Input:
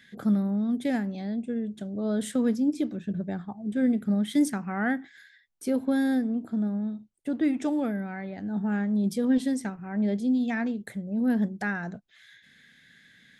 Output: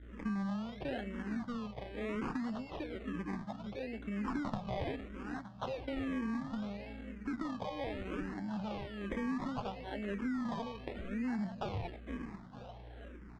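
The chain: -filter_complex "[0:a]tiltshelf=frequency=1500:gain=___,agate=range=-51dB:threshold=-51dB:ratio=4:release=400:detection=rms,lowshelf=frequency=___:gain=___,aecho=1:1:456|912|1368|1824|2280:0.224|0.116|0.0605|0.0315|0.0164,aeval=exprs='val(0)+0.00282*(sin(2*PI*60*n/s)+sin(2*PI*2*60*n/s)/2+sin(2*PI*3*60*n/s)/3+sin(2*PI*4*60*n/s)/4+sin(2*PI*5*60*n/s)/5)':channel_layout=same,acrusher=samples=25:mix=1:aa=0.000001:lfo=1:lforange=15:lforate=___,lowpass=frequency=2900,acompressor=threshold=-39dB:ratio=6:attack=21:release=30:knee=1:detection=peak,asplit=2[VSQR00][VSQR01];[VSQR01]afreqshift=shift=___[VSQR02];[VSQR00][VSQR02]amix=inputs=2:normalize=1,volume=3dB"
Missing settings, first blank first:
-5.5, 240, -8, 0.68, -1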